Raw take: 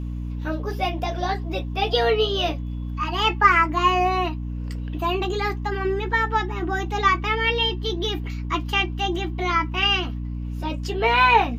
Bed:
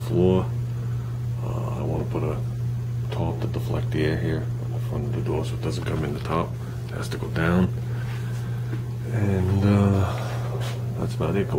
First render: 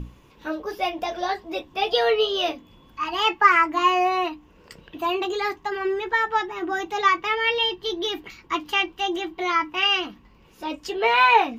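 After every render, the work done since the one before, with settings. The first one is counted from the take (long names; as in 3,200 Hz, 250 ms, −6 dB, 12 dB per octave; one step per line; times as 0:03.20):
mains-hum notches 60/120/180/240/300 Hz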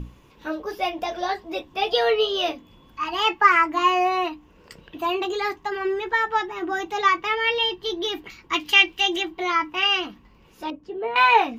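0:08.53–0:09.23: high shelf with overshoot 1,700 Hz +6.5 dB, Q 1.5
0:10.70–0:11.16: resonant band-pass 190 Hz, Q 0.64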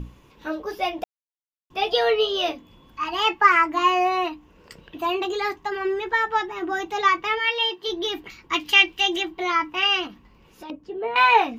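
0:01.04–0:01.70: silence
0:07.38–0:07.87: high-pass filter 930 Hz → 230 Hz
0:10.07–0:10.70: downward compressor, threshold −36 dBFS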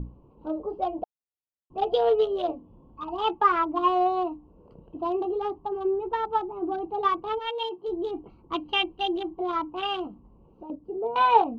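adaptive Wiener filter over 25 samples
drawn EQ curve 850 Hz 0 dB, 1,300 Hz −5 dB, 2,100 Hz −20 dB, 3,200 Hz −6 dB, 7,200 Hz −24 dB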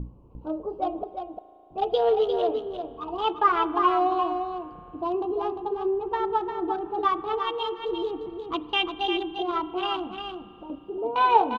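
on a send: single-tap delay 350 ms −6.5 dB
on the sum: spring reverb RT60 3.3 s, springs 36 ms, chirp 70 ms, DRR 15 dB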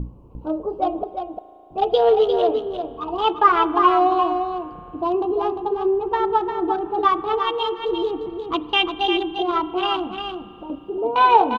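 level +6 dB
brickwall limiter −3 dBFS, peak gain reduction 2.5 dB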